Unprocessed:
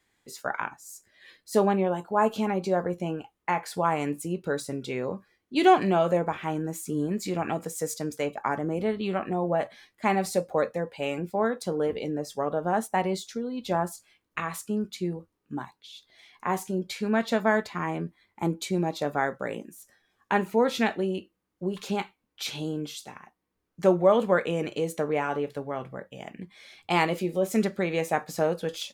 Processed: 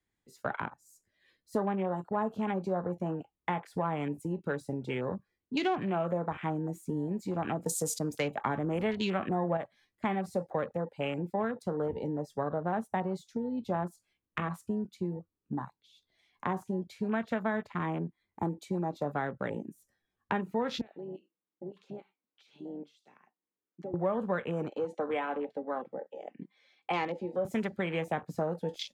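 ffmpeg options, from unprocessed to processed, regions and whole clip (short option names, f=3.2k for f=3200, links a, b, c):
-filter_complex "[0:a]asettb=1/sr,asplit=3[a][b][c];[a]atrim=end=7.664[d];[b]atrim=start=7.66:end=9.57,asetpts=PTS-STARTPTS,afade=t=in:d=0.004:c=qsin,afade=t=out:st=1.906:d=0.004:c=qsin,highshelf=f=3.6k:g=7.5,acontrast=45[e];[c]atrim=start=9.566[f];[d][e]acrossfade=d=0.004:c1=hsin:c2=qsin[g];[g][f]acrossfade=d=0.004:c1=qsin:c2=hsin,asettb=1/sr,asplit=3[h][i][j];[h]atrim=end=20.814[k];[i]atrim=start=20.81:end=23.94,asetpts=PTS-STARTPTS,afade=t=in:d=0.004:c=qsin,afade=t=out:st=3.126:d=0.004:c=qsin,aemphasis=mode=production:type=75fm,acompressor=threshold=-38dB:ratio=8:attack=3.2:release=140:knee=1:detection=peak,highpass=300,lowpass=2.8k[l];[j]atrim=start=23.936[m];[k][l]acrossfade=d=0.004:c1=hsin:c2=qsin[n];[n][m]acrossfade=d=0.004:c1=qsin:c2=hsin,asettb=1/sr,asplit=3[o][p][q];[o]atrim=end=24.684[r];[p]atrim=start=24.68:end=27.45,asetpts=PTS-STARTPTS,afade=t=in:d=0.004:c=qsin,afade=t=out:st=2.766:d=0.004:c=qsin,highpass=390,lowpass=4.8k,aecho=1:1:3.9:0.41,atrim=end_sample=122157[s];[q]atrim=start=27.446[t];[r][s]acrossfade=d=0.004:c1=hsin:c2=qsin[u];[u][t]acrossfade=d=0.004:c1=qsin:c2=hsin,afwtdn=0.0141,lowshelf=f=340:g=10.5,acrossover=split=190|730[v][w][x];[v]acompressor=threshold=-42dB:ratio=4[y];[w]acompressor=threshold=-37dB:ratio=4[z];[x]acompressor=threshold=-34dB:ratio=4[aa];[y][z][aa]amix=inputs=3:normalize=0"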